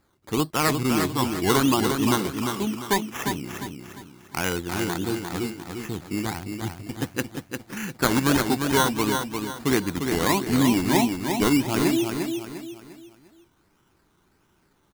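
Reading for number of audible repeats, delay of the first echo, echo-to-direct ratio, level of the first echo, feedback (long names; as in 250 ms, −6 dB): 4, 350 ms, −5.0 dB, −5.5 dB, 37%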